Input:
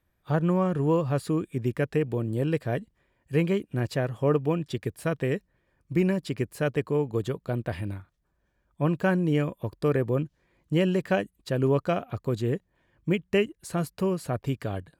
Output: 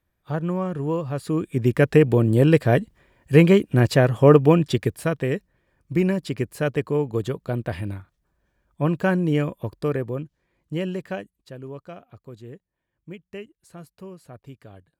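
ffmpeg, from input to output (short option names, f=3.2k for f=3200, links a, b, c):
-af "volume=10.5dB,afade=t=in:st=1.18:d=0.77:silence=0.251189,afade=t=out:st=4.64:d=0.5:silence=0.421697,afade=t=out:st=9.57:d=0.61:silence=0.473151,afade=t=out:st=10.89:d=0.73:silence=0.316228"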